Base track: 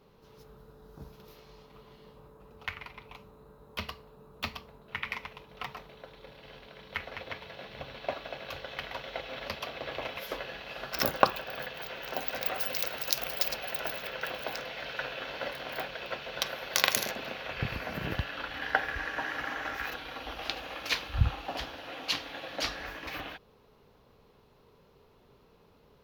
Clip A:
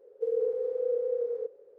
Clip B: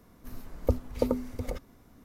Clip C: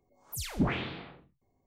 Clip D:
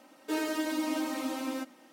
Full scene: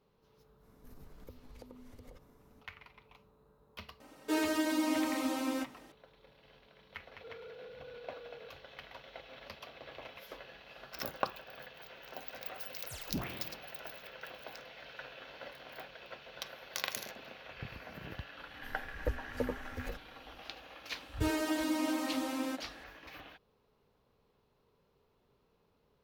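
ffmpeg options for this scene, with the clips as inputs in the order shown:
ffmpeg -i bed.wav -i cue0.wav -i cue1.wav -i cue2.wav -i cue3.wav -filter_complex "[2:a]asplit=2[link_01][link_02];[4:a]asplit=2[link_03][link_04];[0:a]volume=-11.5dB[link_05];[link_01]acompressor=threshold=-41dB:ratio=6:attack=3.2:release=140:knee=1:detection=peak[link_06];[1:a]asoftclip=type=tanh:threshold=-33.5dB[link_07];[link_02]asplit=2[link_08][link_09];[link_09]adelay=8.7,afreqshift=2[link_10];[link_08][link_10]amix=inputs=2:normalize=1[link_11];[link_06]atrim=end=2.04,asetpts=PTS-STARTPTS,volume=-8dB,afade=type=in:duration=0.05,afade=type=out:start_time=1.99:duration=0.05,adelay=600[link_12];[link_03]atrim=end=1.92,asetpts=PTS-STARTPTS,afade=type=in:duration=0.004:curve=hsin,afade=type=out:start_time=1.916:duration=0.004:curve=hsin,adelay=4000[link_13];[link_07]atrim=end=1.78,asetpts=PTS-STARTPTS,volume=-14dB,afade=type=in:duration=0.004:curve=hsin,afade=type=out:start_time=1.776:duration=0.004:curve=hsin,adelay=7020[link_14];[3:a]atrim=end=1.66,asetpts=PTS-STARTPTS,volume=-10.5dB,afade=type=in:duration=0.004:curve=hsin,afade=type=out:start_time=1.656:duration=0.004:curve=hsin,adelay=12540[link_15];[link_11]atrim=end=2.04,asetpts=PTS-STARTPTS,volume=-5dB,afade=type=in:duration=0.004:curve=hsin,afade=type=out:start_time=2.036:duration=0.004:curve=hsin,adelay=18380[link_16];[link_04]atrim=end=1.92,asetpts=PTS-STARTPTS,volume=-1.5dB,afade=type=in:duration=0.004:curve=hsin,afade=type=out:start_time=1.916:duration=0.004:curve=hsin,adelay=20920[link_17];[link_05][link_12][link_13][link_14][link_15][link_16][link_17]amix=inputs=7:normalize=0" out.wav

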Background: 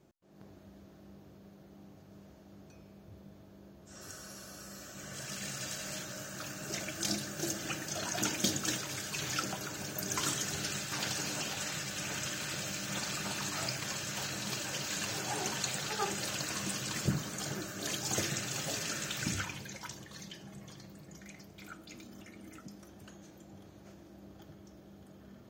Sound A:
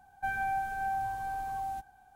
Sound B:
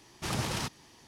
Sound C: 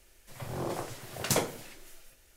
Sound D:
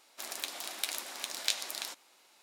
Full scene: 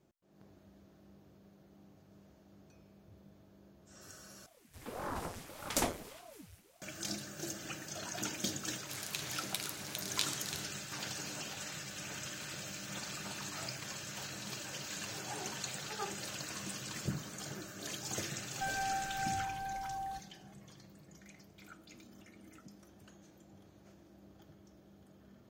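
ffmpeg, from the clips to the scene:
ffmpeg -i bed.wav -i cue0.wav -i cue1.wav -i cue2.wav -i cue3.wav -filter_complex "[0:a]volume=-6dB[link_01];[3:a]aeval=exprs='val(0)*sin(2*PI*400*n/s+400*0.8/1.7*sin(2*PI*1.7*n/s))':channel_layout=same[link_02];[4:a]tiltshelf=frequency=970:gain=-3[link_03];[link_01]asplit=2[link_04][link_05];[link_04]atrim=end=4.464[link_06];[link_02]atrim=end=2.36,asetpts=PTS-STARTPTS,volume=-2dB[link_07];[link_05]atrim=start=6.816[link_08];[link_03]atrim=end=2.42,asetpts=PTS-STARTPTS,volume=-7dB,afade=type=in:duration=0.004:curve=hsin,afade=type=out:start_time=2.416:duration=0.004:curve=hsin,adelay=8710[link_09];[1:a]atrim=end=2.15,asetpts=PTS-STARTPTS,volume=-5dB,afade=type=in:duration=0.004:curve=hsin,afade=type=out:start_time=2.146:duration=0.004:curve=hsin,adelay=18380[link_10];[link_06][link_07]acrossfade=duration=0.004:curve1=hsin:curve2=hsin[link_11];[link_11][link_08]acrossfade=duration=0.004:curve1=hsin:curve2=hsin[link_12];[link_12][link_09][link_10]amix=inputs=3:normalize=0" out.wav

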